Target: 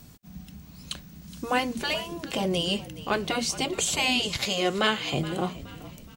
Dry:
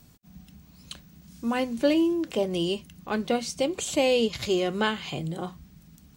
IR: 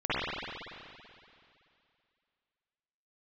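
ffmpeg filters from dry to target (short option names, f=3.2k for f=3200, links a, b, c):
-filter_complex "[0:a]asettb=1/sr,asplit=3[a][b][c];[a]atrim=end=4.374[d];[b]atrim=start=4.37:end=5.14,asetpts=PTS-STARTPTS,afade=t=in:d=0.004:c=qsin,afade=t=out:st=0.766:d=0.004:c=qsin,highpass=f=340:p=1[e];[c]atrim=start=5.136[f];[d][e]acrossfade=d=0.004:c1=hsin:c2=qsin[g];[g][f]acrossfade=d=0.004:c1=qsin:c2=hsin,afftfilt=real='re*lt(hypot(re,im),0.316)':imag='im*lt(hypot(re,im),0.316)':win_size=1024:overlap=0.75,asplit=5[h][i][j][k][l];[i]adelay=421,afreqshift=-58,volume=-16.5dB[m];[j]adelay=842,afreqshift=-116,volume=-24dB[n];[k]adelay=1263,afreqshift=-174,volume=-31.6dB[o];[l]adelay=1684,afreqshift=-232,volume=-39.1dB[p];[h][m][n][o][p]amix=inputs=5:normalize=0,volume=5.5dB"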